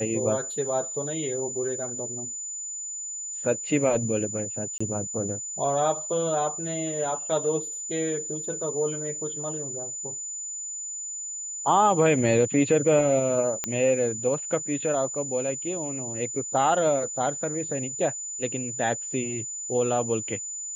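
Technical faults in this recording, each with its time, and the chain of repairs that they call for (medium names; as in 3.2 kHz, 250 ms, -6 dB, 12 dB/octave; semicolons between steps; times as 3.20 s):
whine 7 kHz -32 dBFS
4.78–4.80 s: dropout 25 ms
13.64 s: pop -10 dBFS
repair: de-click; band-stop 7 kHz, Q 30; interpolate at 4.78 s, 25 ms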